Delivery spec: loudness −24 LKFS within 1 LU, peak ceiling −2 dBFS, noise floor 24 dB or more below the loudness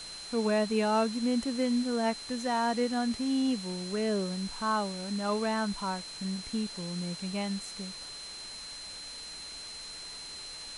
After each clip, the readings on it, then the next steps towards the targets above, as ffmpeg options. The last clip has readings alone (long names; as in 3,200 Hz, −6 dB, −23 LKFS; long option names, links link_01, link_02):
interfering tone 4,100 Hz; level of the tone −42 dBFS; background noise floor −43 dBFS; target noise floor −56 dBFS; integrated loudness −32.0 LKFS; sample peak −18.0 dBFS; target loudness −24.0 LKFS
→ -af "bandreject=frequency=4100:width=30"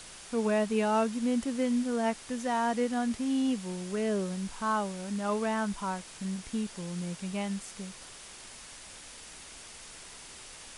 interfering tone none found; background noise floor −48 dBFS; target noise floor −56 dBFS
→ -af "afftdn=noise_reduction=8:noise_floor=-48"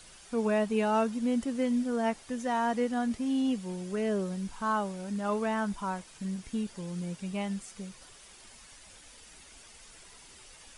background noise floor −54 dBFS; target noise floor −56 dBFS
→ -af "afftdn=noise_reduction=6:noise_floor=-54"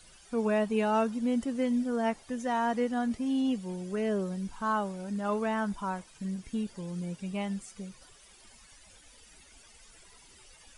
background noise floor −57 dBFS; integrated loudness −31.5 LKFS; sample peak −18.5 dBFS; target loudness −24.0 LKFS
→ -af "volume=7.5dB"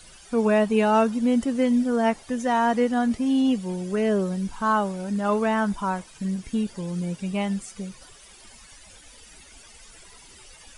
integrated loudness −24.0 LKFS; sample peak −11.0 dBFS; background noise floor −49 dBFS